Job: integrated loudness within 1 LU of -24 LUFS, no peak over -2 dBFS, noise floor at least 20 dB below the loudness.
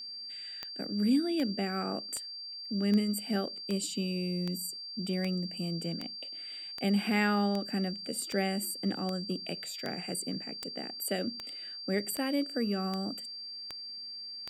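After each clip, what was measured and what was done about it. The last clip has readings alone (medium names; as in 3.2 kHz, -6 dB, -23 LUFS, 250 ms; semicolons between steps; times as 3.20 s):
clicks found 19; steady tone 4.7 kHz; tone level -40 dBFS; loudness -33.0 LUFS; peak level -15.0 dBFS; loudness target -24.0 LUFS
-> de-click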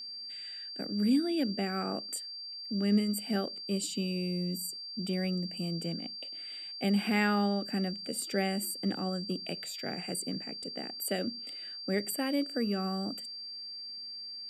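clicks found 0; steady tone 4.7 kHz; tone level -40 dBFS
-> band-stop 4.7 kHz, Q 30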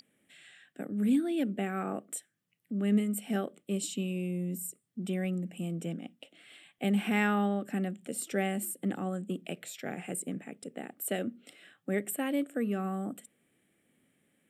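steady tone not found; loudness -33.5 LUFS; peak level -14.5 dBFS; loudness target -24.0 LUFS
-> trim +9.5 dB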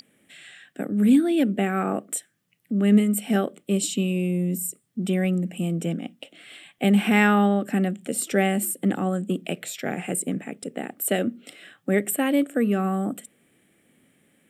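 loudness -24.0 LUFS; peak level -5.0 dBFS; noise floor -68 dBFS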